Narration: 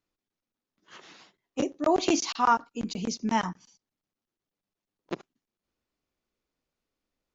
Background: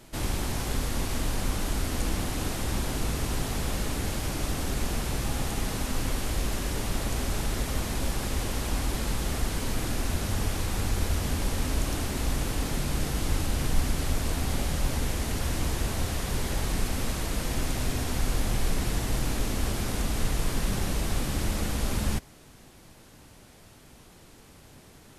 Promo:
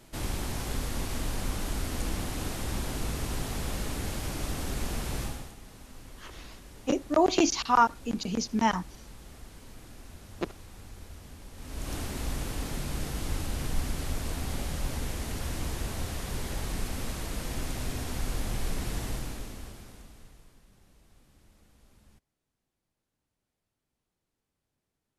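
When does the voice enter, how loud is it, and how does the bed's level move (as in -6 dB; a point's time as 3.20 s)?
5.30 s, +1.0 dB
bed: 5.23 s -3.5 dB
5.57 s -19 dB
11.52 s -19 dB
11.93 s -5 dB
19.07 s -5 dB
20.66 s -32.5 dB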